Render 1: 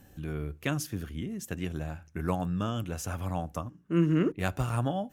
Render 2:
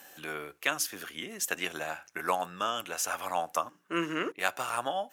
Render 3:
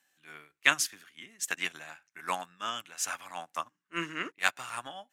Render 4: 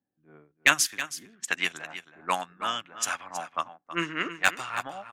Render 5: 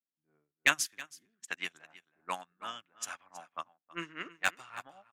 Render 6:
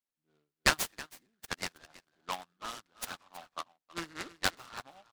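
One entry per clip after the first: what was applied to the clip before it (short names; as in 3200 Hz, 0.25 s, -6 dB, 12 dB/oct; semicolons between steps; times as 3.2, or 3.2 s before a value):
HPF 780 Hz 12 dB/oct; vocal rider within 3 dB 0.5 s; gain +8.5 dB
graphic EQ 125/250/500/1000/2000/4000/8000 Hz +9/+5/-3/+4/+10/+7/+9 dB; transient shaper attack -4 dB, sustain +4 dB; upward expander 2.5:1, over -37 dBFS
low-pass opened by the level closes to 300 Hz, open at -28.5 dBFS; hard clip -12.5 dBFS, distortion -14 dB; echo 0.322 s -12.5 dB; gain +5.5 dB
upward expander 1.5:1, over -48 dBFS; gain -5 dB
noise-modulated delay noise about 2100 Hz, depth 0.071 ms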